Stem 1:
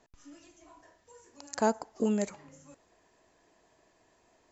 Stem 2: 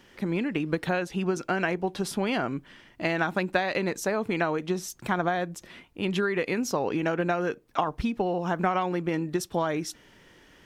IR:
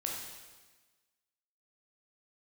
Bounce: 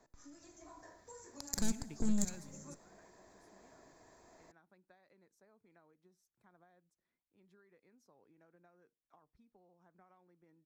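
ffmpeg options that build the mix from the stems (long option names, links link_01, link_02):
-filter_complex "[0:a]aeval=exprs='(tanh(31.6*val(0)+0.75)-tanh(0.75))/31.6':channel_layout=same,volume=2dB,asplit=3[link_01][link_02][link_03];[link_02]volume=-16dB[link_04];[1:a]adelay=1350,volume=-17.5dB[link_05];[link_03]apad=whole_len=529511[link_06];[link_05][link_06]sidechaingate=range=-29dB:threshold=-53dB:ratio=16:detection=peak[link_07];[2:a]atrim=start_sample=2205[link_08];[link_04][link_08]afir=irnorm=-1:irlink=0[link_09];[link_01][link_07][link_09]amix=inputs=3:normalize=0,acrossover=split=190|3000[link_10][link_11][link_12];[link_11]acompressor=threshold=-57dB:ratio=5[link_13];[link_10][link_13][link_12]amix=inputs=3:normalize=0,equalizer=frequency=2900:width_type=o:width=0.41:gain=-14.5,dynaudnorm=framelen=400:gausssize=3:maxgain=6dB"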